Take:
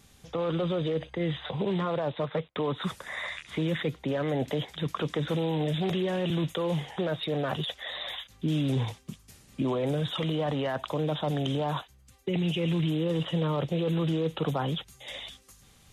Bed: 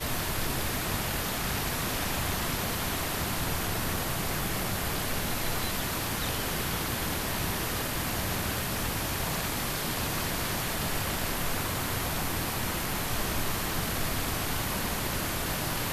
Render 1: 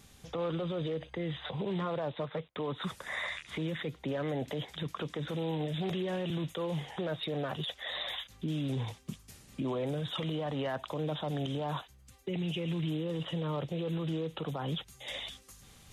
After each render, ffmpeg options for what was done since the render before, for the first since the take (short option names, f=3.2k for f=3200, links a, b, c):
-af "alimiter=level_in=2.5dB:limit=-24dB:level=0:latency=1:release=284,volume=-2.5dB,areverse,acompressor=mode=upward:threshold=-51dB:ratio=2.5,areverse"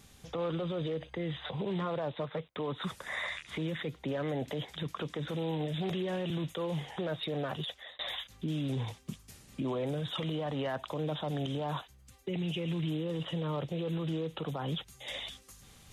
-filter_complex "[0:a]asplit=2[a][b];[a]atrim=end=7.99,asetpts=PTS-STARTPTS,afade=t=out:st=7.49:d=0.5:c=qsin[c];[b]atrim=start=7.99,asetpts=PTS-STARTPTS,afade=t=in:d=0.004:c=hsin[d];[c][d]concat=n=2:v=0:a=1"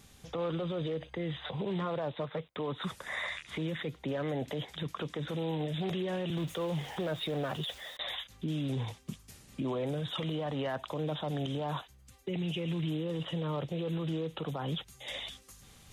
-filter_complex "[0:a]asettb=1/sr,asplit=3[a][b][c];[a]atrim=end=6.374[d];[b]atrim=start=6.37:end=7.97,asetpts=PTS-STARTPTS,afade=t=in:d=0.004:c=qsin,afade=t=out:st=1.596:d=0.004:c=qsin,aeval=exprs='val(0)+0.5*0.00473*sgn(val(0))':c=same[e];[c]atrim=start=7.966[f];[d][e]acrossfade=d=0.004:c1=hsin:c2=qsin[g];[g][f]acrossfade=d=0.004:c1=qsin:c2=hsin"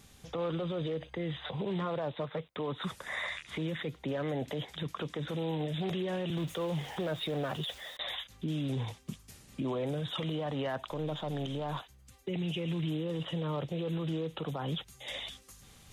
-filter_complex "[0:a]asettb=1/sr,asplit=3[a][b][c];[a]atrim=end=10.874[d];[b]atrim=start=10.87:end=11.8,asetpts=PTS-STARTPTS,afade=t=in:d=0.004:c=qsin,afade=t=out:st=0.926:d=0.004:c=qsin,aeval=exprs='if(lt(val(0),0),0.708*val(0),val(0))':c=same[e];[c]atrim=start=11.796[f];[d][e]acrossfade=d=0.004:c1=hsin:c2=qsin[g];[g][f]acrossfade=d=0.004:c1=qsin:c2=hsin"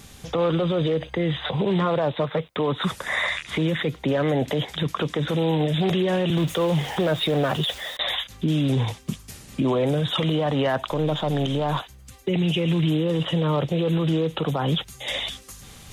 -af "volume=12dB"